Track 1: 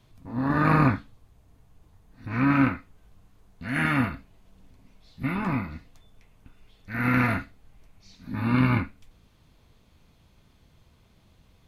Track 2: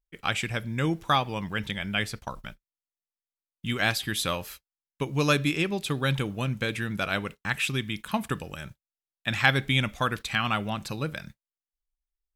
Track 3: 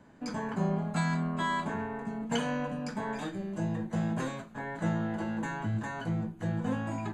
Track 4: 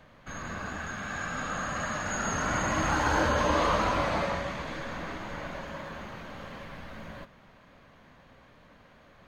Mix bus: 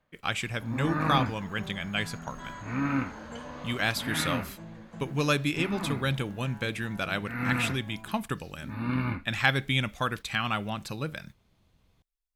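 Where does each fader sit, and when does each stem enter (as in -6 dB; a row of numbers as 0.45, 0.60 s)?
-7.5, -2.5, -13.0, -19.5 dB; 0.35, 0.00, 1.00, 0.00 s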